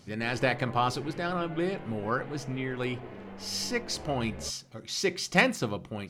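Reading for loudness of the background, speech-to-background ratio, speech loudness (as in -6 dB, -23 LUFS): -45.0 LUFS, 14.5 dB, -30.5 LUFS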